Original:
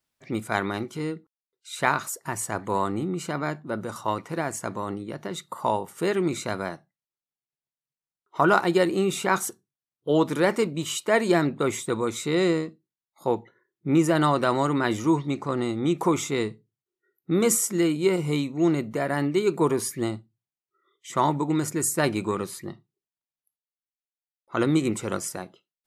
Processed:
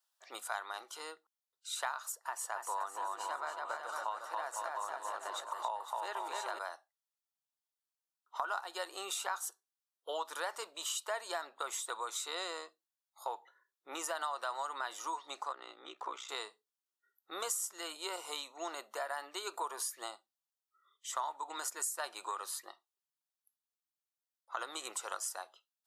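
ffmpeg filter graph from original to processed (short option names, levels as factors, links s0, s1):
-filter_complex "[0:a]asettb=1/sr,asplit=3[s0][s1][s2];[s0]atrim=end=2.124[s3];[s1]atrim=start=2.12:end=6.59,asetpts=PTS-STARTPTS,afade=t=in:d=0.004:c=qsin,afade=t=out:st=4.466:d=0.004:c=qsin,bass=f=250:g=-1,treble=f=4000:g=-7,aecho=1:1:280|504|683.2|826.6|941.2:0.631|0.398|0.251|0.158|0.1,atrim=end_sample=197127[s4];[s2]atrim=start=6.586[s5];[s3][s4]acrossfade=d=0.004:c1=hsin:c2=qsin[s6];[s6][s5]acrossfade=d=0.004:c1=qsin:c2=hsin,asettb=1/sr,asplit=3[s7][s8][s9];[s7]atrim=end=15.524[s10];[s8]atrim=start=15.52:end=16.29,asetpts=PTS-STARTPTS,afade=t=in:d=0.004:c=qsin,afade=t=out:st=0.766:d=0.004:c=qsin,aeval=exprs='val(0)*sin(2*PI*31*n/s)':c=same,highpass=150,lowpass=2800,equalizer=f=820:w=1.1:g=-9.5[s11];[s9]atrim=start=16.286[s12];[s10][s11]acrossfade=d=0.004:c1=hsin:c2=qsin[s13];[s13][s12]acrossfade=d=0.004:c1=qsin:c2=hsin,highpass=f=740:w=0.5412,highpass=f=740:w=1.3066,equalizer=f=2200:w=3.5:g=-14,acompressor=threshold=0.0158:ratio=4"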